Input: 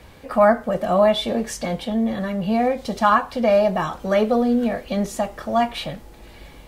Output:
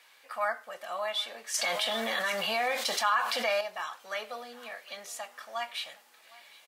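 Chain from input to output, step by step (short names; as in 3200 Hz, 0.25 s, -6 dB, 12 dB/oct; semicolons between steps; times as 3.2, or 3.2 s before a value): HPF 1400 Hz 12 dB/oct; feedback echo 0.761 s, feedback 41%, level -22 dB; 1.54–3.61 fast leveller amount 70%; gain -5.5 dB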